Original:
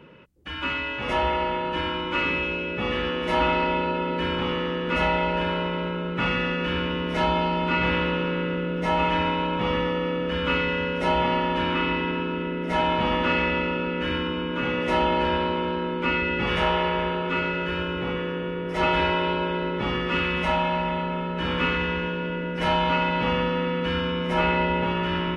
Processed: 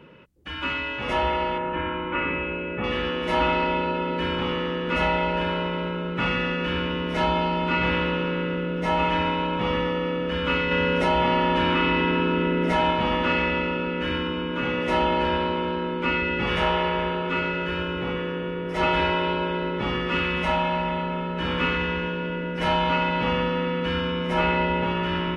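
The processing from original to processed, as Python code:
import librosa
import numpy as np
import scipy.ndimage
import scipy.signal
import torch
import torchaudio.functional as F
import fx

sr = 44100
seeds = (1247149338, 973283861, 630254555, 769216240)

y = fx.lowpass(x, sr, hz=2500.0, slope=24, at=(1.58, 2.84))
y = fx.env_flatten(y, sr, amount_pct=70, at=(10.71, 12.91))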